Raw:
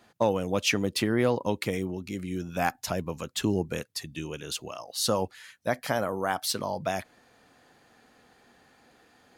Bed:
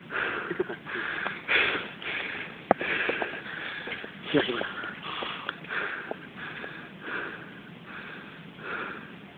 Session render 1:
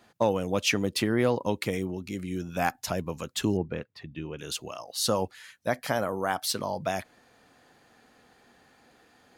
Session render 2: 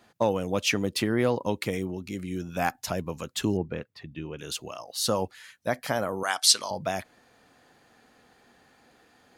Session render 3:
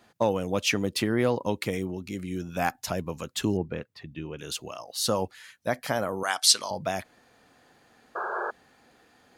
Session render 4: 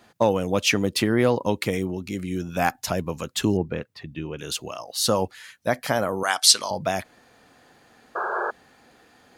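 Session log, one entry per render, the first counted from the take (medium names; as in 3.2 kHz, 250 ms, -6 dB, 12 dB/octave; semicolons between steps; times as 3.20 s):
3.57–4.39 s: distance through air 370 m
6.23–6.71 s: frequency weighting ITU-R 468
8.15–8.51 s: painted sound noise 340–1700 Hz -31 dBFS
trim +4.5 dB; peak limiter -2 dBFS, peak gain reduction 1.5 dB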